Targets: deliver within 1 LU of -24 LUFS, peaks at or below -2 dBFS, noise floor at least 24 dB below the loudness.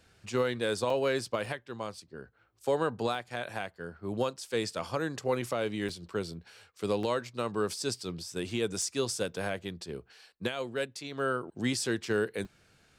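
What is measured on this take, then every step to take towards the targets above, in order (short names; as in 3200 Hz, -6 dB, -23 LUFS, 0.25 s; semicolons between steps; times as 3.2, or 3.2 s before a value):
dropouts 7; longest dropout 2.7 ms; loudness -33.0 LUFS; peak -17.0 dBFS; loudness target -24.0 LUFS
-> interpolate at 0.9/1.46/3.15/5.89/7.03/8.82/12.45, 2.7 ms; gain +9 dB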